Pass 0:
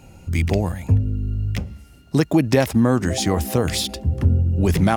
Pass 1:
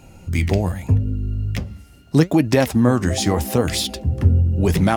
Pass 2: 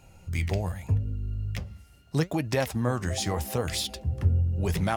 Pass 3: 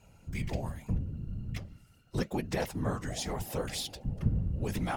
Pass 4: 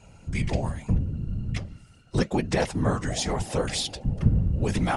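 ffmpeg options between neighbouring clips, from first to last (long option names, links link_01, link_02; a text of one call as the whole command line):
ffmpeg -i in.wav -af "flanger=delay=2.9:depth=8.1:regen=74:speed=0.8:shape=sinusoidal,volume=5.5dB" out.wav
ffmpeg -i in.wav -af "equalizer=frequency=270:width=1.3:gain=-8,volume=-7.5dB" out.wav
ffmpeg -i in.wav -af "afftfilt=real='hypot(re,im)*cos(2*PI*random(0))':imag='hypot(re,im)*sin(2*PI*random(1))':win_size=512:overlap=0.75" out.wav
ffmpeg -i in.wav -af "aresample=22050,aresample=44100,volume=8dB" out.wav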